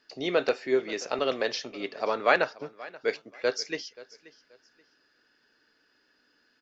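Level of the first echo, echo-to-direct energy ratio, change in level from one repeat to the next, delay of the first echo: -20.0 dB, -19.5 dB, -11.5 dB, 0.531 s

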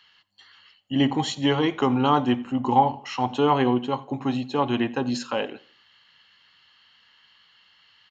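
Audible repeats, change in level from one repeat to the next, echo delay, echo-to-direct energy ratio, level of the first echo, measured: 2, -8.0 dB, 87 ms, -22.0 dB, -22.5 dB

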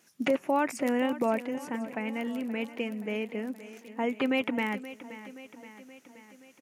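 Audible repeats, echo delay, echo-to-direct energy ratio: 4, 0.525 s, -13.0 dB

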